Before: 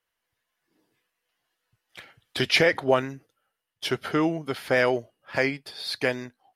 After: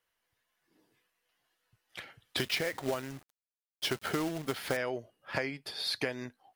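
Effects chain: compression 16:1, threshold -29 dBFS, peak gain reduction 15 dB; 2.37–4.77 s: companded quantiser 4-bit

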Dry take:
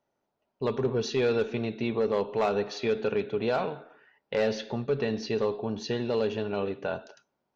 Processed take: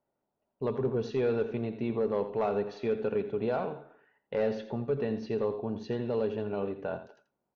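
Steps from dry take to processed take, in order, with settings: low-pass 1.1 kHz 6 dB/octave; delay 85 ms -12.5 dB; trim -2 dB

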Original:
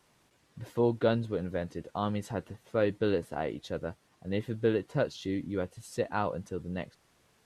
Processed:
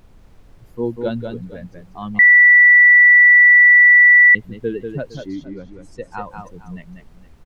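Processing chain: expander on every frequency bin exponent 2; high-pass 140 Hz 12 dB/octave; bass shelf 300 Hz +7 dB; added noise brown -49 dBFS; 5.26–6.12 s: distance through air 74 m; multi-tap echo 192/460 ms -6/-18 dB; 2.19–4.35 s: bleep 1.96 kHz -9 dBFS; trim +3.5 dB

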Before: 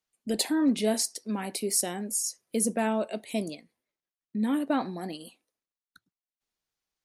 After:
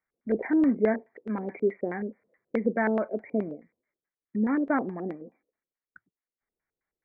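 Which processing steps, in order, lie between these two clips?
brick-wall FIR low-pass 2.4 kHz; LFO low-pass square 4.7 Hz 460–1900 Hz

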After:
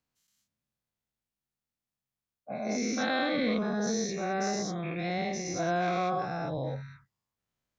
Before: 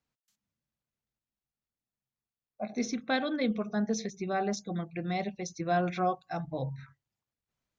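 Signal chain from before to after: every event in the spectrogram widened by 240 ms; trim -5 dB

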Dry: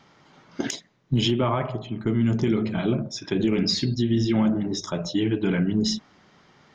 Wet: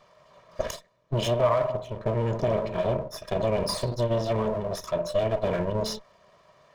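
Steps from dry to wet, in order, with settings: comb filter that takes the minimum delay 1.7 ms; small resonant body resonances 620/960 Hz, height 14 dB, ringing for 30 ms; trim -5 dB

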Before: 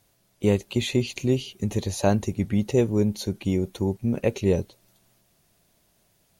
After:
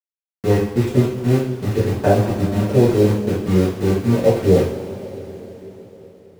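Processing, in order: LFO low-pass saw up 3.4 Hz 450–1800 Hz; small samples zeroed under -28 dBFS; two-slope reverb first 0.52 s, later 4.6 s, from -18 dB, DRR -9 dB; trim -3 dB

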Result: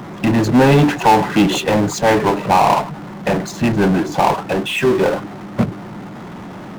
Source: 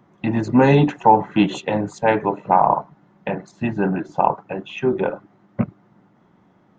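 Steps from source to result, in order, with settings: power-law waveshaper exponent 0.5; trim -2 dB

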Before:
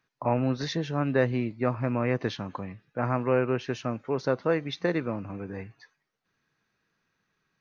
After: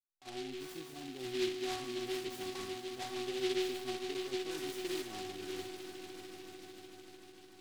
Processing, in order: fade-in on the opening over 1.13 s; low-pass 2.9 kHz 6 dB/octave; bass shelf 99 Hz +9.5 dB; reverse; compression, threshold -27 dBFS, peak gain reduction 10 dB; reverse; peak limiter -23 dBFS, peak gain reduction 5.5 dB; inharmonic resonator 370 Hz, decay 0.82 s, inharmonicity 0.002; small resonant body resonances 270/800 Hz, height 12 dB; on a send: echo with a slow build-up 149 ms, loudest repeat 5, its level -14 dB; on the sum: delay time shaken by noise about 3 kHz, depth 0.15 ms; trim +13.5 dB

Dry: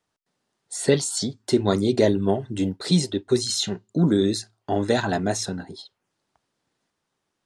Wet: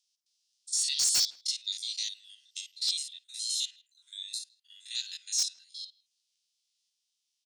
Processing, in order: spectrogram pixelated in time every 50 ms; steep high-pass 2.8 kHz 36 dB/octave; peaking EQ 5.4 kHz +11 dB 0.8 oct, from 2.91 s -6.5 dB, from 4.95 s +6.5 dB; wavefolder -19 dBFS; speakerphone echo 160 ms, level -23 dB

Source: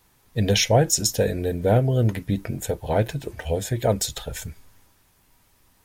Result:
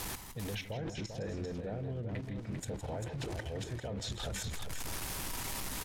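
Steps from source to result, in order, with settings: jump at every zero crossing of -33 dBFS; low-pass that closes with the level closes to 2.7 kHz, closed at -16.5 dBFS; treble shelf 11 kHz +5.5 dB; reverse; compression 5:1, threshold -30 dBFS, peak gain reduction 16 dB; reverse; peak limiter -29 dBFS, peak gain reduction 8.5 dB; level held to a coarse grid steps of 13 dB; on a send: multi-tap echo 162/163/395 ms -17.5/-12.5/-6.5 dB; on the sum: loudspeaker Doppler distortion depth 0.11 ms

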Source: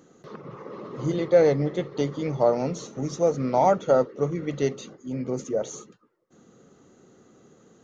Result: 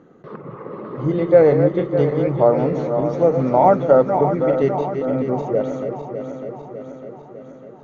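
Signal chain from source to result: backward echo that repeats 301 ms, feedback 75%, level -7.5 dB; low-pass 1.9 kHz 12 dB/octave; trim +6 dB

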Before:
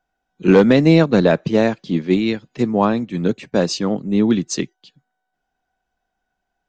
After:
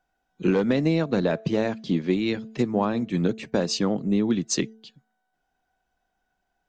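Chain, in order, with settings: compression 6:1, threshold -19 dBFS, peak gain reduction 12 dB; de-hum 221.1 Hz, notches 3

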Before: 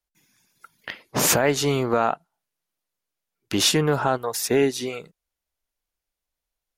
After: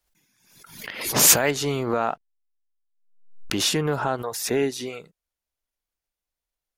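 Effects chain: 1.01–1.51 s: treble shelf 2.4 kHz +10.5 dB; 2.01–3.57 s: hysteresis with a dead band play -47 dBFS; swell ahead of each attack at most 75 dB/s; trim -3.5 dB

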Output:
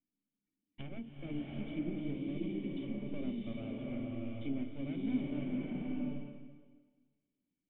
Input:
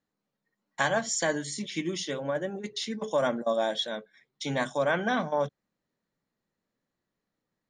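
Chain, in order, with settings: low-pass that closes with the level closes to 1 kHz, closed at -27 dBFS; half-wave rectifier; cascade formant filter i; swelling reverb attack 740 ms, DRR -3 dB; trim +4.5 dB

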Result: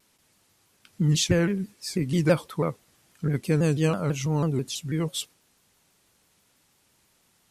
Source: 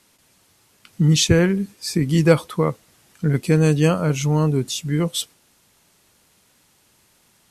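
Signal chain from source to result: vibrato with a chosen wave saw down 6.1 Hz, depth 160 cents; trim -6.5 dB

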